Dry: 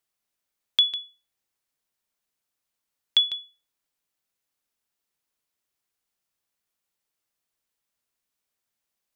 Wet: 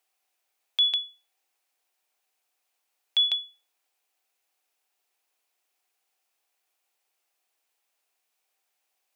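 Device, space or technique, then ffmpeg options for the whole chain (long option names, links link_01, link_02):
laptop speaker: -af "highpass=frequency=330:width=0.5412,highpass=frequency=330:width=1.3066,equalizer=frequency=760:width_type=o:width=0.25:gain=10,equalizer=frequency=2500:width_type=o:width=0.39:gain=5,alimiter=limit=-20.5dB:level=0:latency=1:release=74,volume=4.5dB"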